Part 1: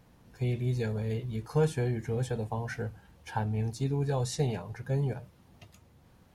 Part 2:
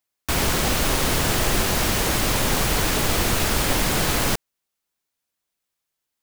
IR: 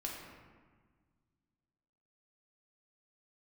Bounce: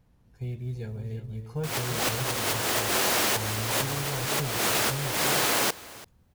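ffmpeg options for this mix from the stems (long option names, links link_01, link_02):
-filter_complex "[0:a]volume=-9dB,asplit=3[link_01][link_02][link_03];[link_02]volume=-9dB[link_04];[1:a]highpass=390,adelay=1350,volume=-1dB,asplit=2[link_05][link_06];[link_06]volume=-20dB[link_07];[link_03]apad=whole_len=333925[link_08];[link_05][link_08]sidechaincompress=threshold=-44dB:ratio=10:attack=16:release=153[link_09];[link_04][link_07]amix=inputs=2:normalize=0,aecho=0:1:338:1[link_10];[link_01][link_09][link_10]amix=inputs=3:normalize=0,acrusher=bits=8:mode=log:mix=0:aa=0.000001,lowshelf=frequency=120:gain=11.5"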